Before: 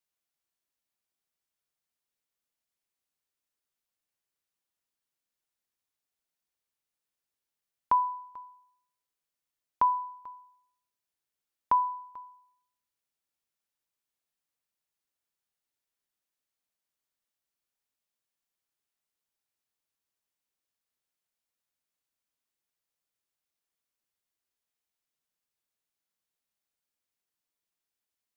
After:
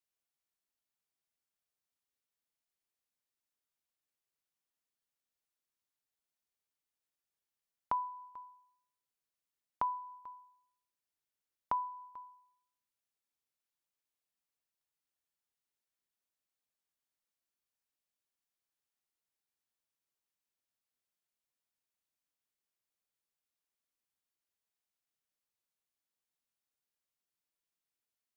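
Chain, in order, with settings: dynamic bell 1.1 kHz, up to -6 dB, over -35 dBFS, Q 0.85; trim -4.5 dB

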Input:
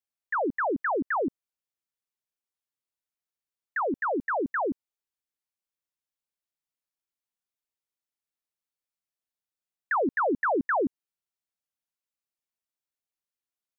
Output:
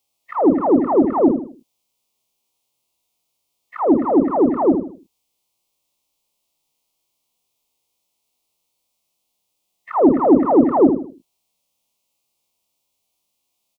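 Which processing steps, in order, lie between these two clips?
every event in the spectrogram widened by 60 ms; Butterworth band-stop 1.6 kHz, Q 1.1; on a send: feedback delay 78 ms, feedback 32%, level -9.5 dB; on the sum: harmonic-percussive split harmonic +9 dB; treble shelf 2 kHz -8.5 dB; tape noise reduction on one side only encoder only; trim +7 dB

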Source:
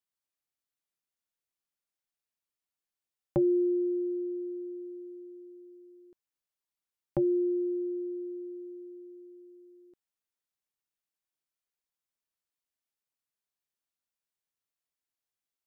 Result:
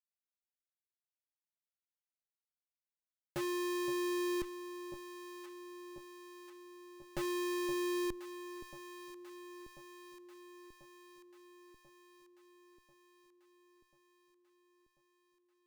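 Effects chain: hum notches 60/120/180/240/300/360/420/480 Hz; Schmitt trigger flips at -33.5 dBFS; echo whose repeats swap between lows and highs 520 ms, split 870 Hz, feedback 78%, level -9.5 dB; trim +2 dB

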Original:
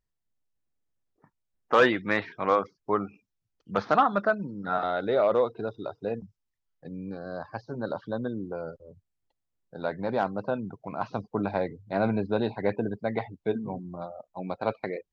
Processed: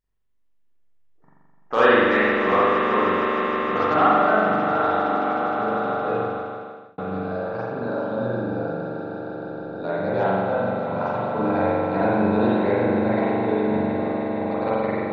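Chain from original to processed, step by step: 4.91–5.49 s: vowel filter i; echo with a slow build-up 155 ms, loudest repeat 5, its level -12 dB; spring tank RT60 1.8 s, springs 42 ms, chirp 75 ms, DRR -9 dB; 6.20–6.98 s: fade out; trim -3 dB

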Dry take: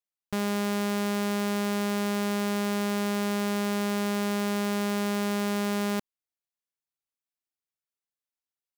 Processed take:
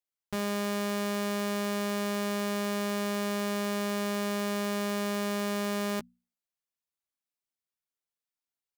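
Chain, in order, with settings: hum notches 60/120/180/240 Hz; doubling 13 ms -7 dB; trim -2.5 dB

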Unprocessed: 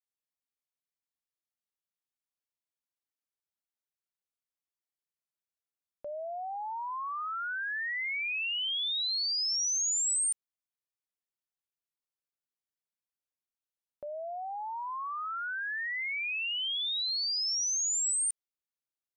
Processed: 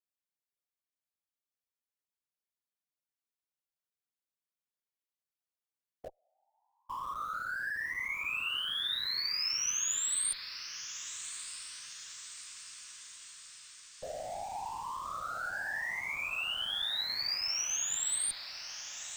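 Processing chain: 6.09–6.90 s: inverted gate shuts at -42 dBFS, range -37 dB; whisper effect; in parallel at -12 dB: Schmitt trigger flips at -39.5 dBFS; on the sum: echo that smears into a reverb 1235 ms, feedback 58%, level -10.5 dB; trim -4 dB

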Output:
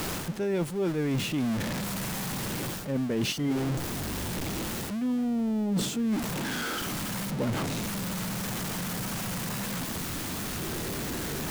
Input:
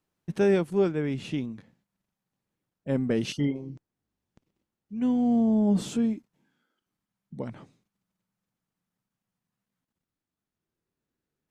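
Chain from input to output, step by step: jump at every zero crossing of -30.5 dBFS; reverse; compression 16:1, threshold -30 dBFS, peak gain reduction 13.5 dB; reverse; trim +5 dB

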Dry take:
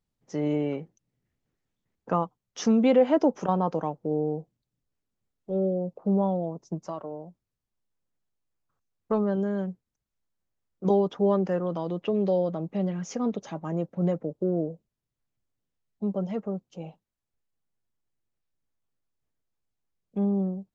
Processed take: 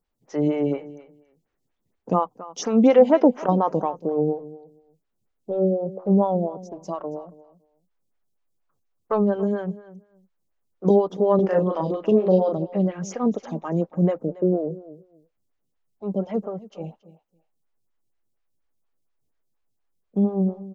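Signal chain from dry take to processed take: 11.35–12.57 s: doubling 38 ms -2 dB; feedback delay 279 ms, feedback 16%, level -18 dB; lamp-driven phase shifter 4.2 Hz; trim +7 dB

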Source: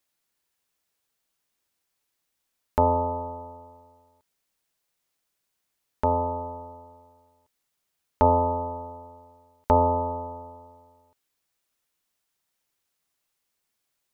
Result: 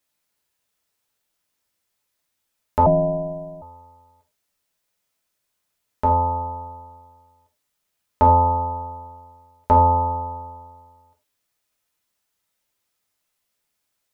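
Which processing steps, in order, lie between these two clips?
gated-style reverb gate 130 ms falling, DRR 0.5 dB; 2.86–3.62 s: frequency shift -250 Hz

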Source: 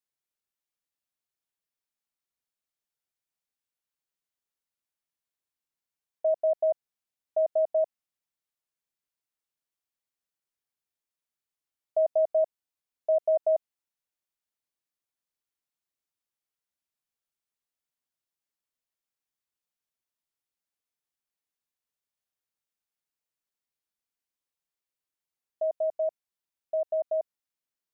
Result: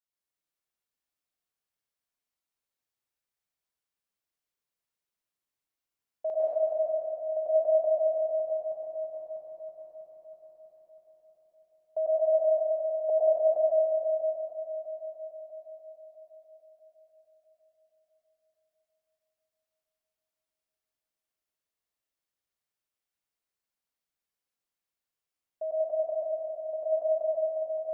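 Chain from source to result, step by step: backward echo that repeats 323 ms, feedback 67%, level -11.5 dB; 6.30–7.64 s: fade in logarithmic; 12.08–13.10 s: Bessel high-pass 380 Hz, order 8; reverberation RT60 3.2 s, pre-delay 96 ms, DRR -6 dB; trim -6 dB

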